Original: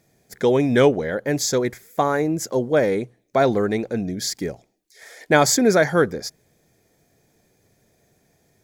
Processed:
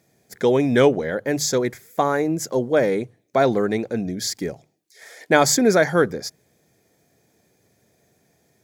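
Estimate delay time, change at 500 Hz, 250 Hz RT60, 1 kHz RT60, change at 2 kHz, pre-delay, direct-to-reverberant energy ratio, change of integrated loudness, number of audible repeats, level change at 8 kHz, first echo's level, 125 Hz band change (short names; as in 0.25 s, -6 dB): none, 0.0 dB, none, none, 0.0 dB, none, none, 0.0 dB, none, 0.0 dB, none, -1.5 dB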